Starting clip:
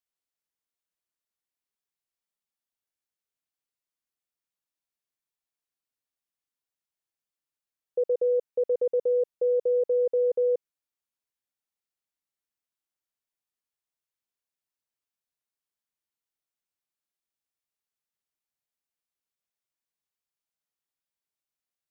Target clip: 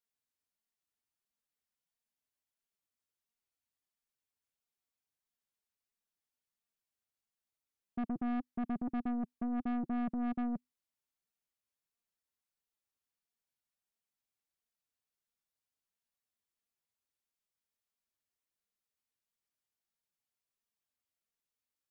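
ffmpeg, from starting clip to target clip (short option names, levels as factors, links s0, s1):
-af "flanger=delay=4.2:depth=1.9:regen=25:speed=1.5:shape=sinusoidal,afreqshift=-250,aeval=exprs='(tanh(56.2*val(0)+0.3)-tanh(0.3))/56.2':c=same,volume=1.26"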